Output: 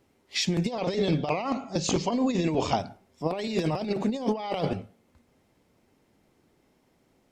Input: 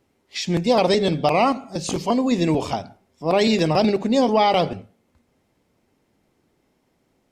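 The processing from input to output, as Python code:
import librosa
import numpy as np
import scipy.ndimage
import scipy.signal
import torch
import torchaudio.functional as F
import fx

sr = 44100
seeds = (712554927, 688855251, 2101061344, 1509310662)

y = fx.cheby1_lowpass(x, sr, hz=7100.0, order=4, at=(0.71, 2.79))
y = fx.over_compress(y, sr, threshold_db=-22.0, ratio=-0.5)
y = y * librosa.db_to_amplitude(-3.5)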